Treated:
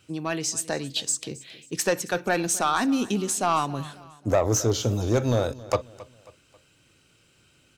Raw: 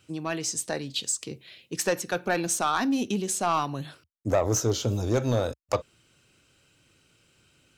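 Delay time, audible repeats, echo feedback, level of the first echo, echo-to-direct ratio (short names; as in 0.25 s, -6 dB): 0.27 s, 3, 43%, -19.5 dB, -18.5 dB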